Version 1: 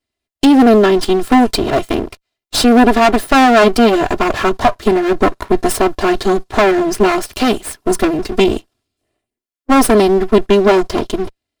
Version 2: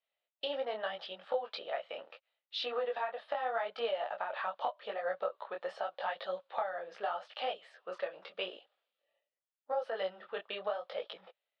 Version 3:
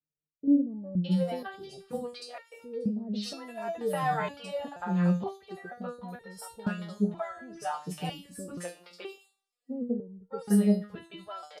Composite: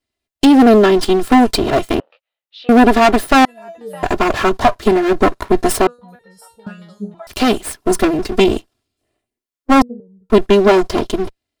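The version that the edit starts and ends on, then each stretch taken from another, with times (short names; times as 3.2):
1
2–2.69 from 2
3.45–4.03 from 3
5.87–7.27 from 3
9.82–10.3 from 3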